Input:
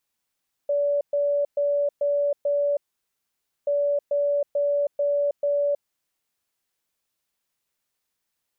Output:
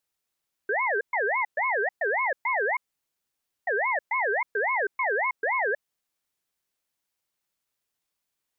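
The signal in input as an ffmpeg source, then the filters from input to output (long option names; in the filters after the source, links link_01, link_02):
-f lavfi -i "aevalsrc='0.106*sin(2*PI*575*t)*clip(min(mod(mod(t,2.98),0.44),0.32-mod(mod(t,2.98),0.44))/0.005,0,1)*lt(mod(t,2.98),2.2)':duration=5.96:sample_rate=44100"
-af "aeval=exprs='val(0)*sin(2*PI*1300*n/s+1300*0.25/3.6*sin(2*PI*3.6*n/s))':channel_layout=same"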